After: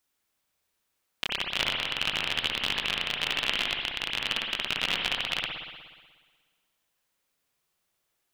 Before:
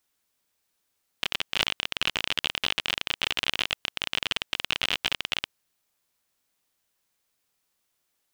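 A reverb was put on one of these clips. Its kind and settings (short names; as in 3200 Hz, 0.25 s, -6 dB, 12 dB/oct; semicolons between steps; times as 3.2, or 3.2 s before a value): spring tank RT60 1.5 s, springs 60 ms, chirp 50 ms, DRR 0 dB; gain -2.5 dB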